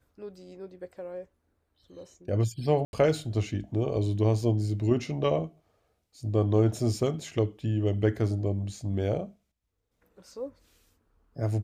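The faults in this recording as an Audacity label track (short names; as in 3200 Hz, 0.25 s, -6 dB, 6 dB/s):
2.850000	2.930000	gap 81 ms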